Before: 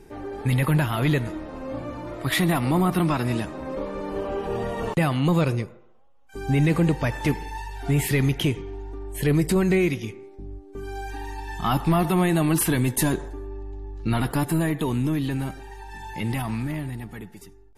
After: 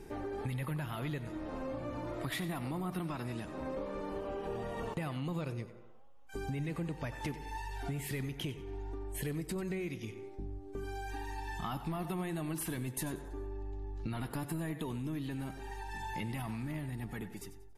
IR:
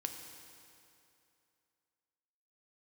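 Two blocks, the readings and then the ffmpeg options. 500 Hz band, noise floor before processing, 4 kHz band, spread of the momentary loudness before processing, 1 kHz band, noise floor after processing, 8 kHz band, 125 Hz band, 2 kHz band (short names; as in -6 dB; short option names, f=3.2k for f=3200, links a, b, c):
-13.5 dB, -49 dBFS, -14.0 dB, 16 LU, -13.0 dB, -50 dBFS, -14.0 dB, -15.0 dB, -14.0 dB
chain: -filter_complex "[0:a]acompressor=threshold=-35dB:ratio=6,asplit=2[a][b];[b]aecho=0:1:93|186|279:0.2|0.0579|0.0168[c];[a][c]amix=inputs=2:normalize=0,volume=-1.5dB"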